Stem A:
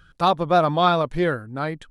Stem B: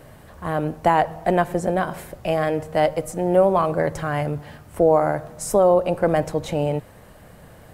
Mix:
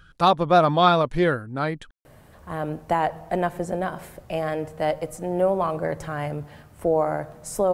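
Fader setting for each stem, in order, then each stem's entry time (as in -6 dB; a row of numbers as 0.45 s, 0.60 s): +1.0 dB, -5.0 dB; 0.00 s, 2.05 s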